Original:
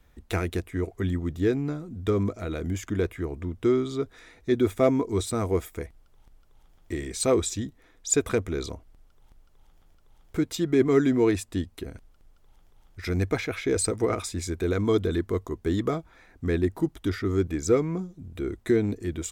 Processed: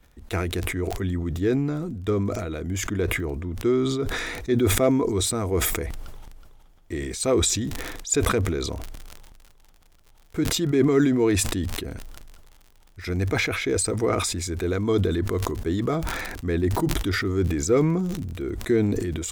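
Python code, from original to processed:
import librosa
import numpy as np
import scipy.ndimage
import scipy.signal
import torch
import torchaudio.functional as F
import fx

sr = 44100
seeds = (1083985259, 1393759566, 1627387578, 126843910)

y = fx.dmg_crackle(x, sr, seeds[0], per_s=fx.steps((0.0, 12.0), (7.02, 60.0)), level_db=-41.0)
y = fx.sustainer(y, sr, db_per_s=28.0)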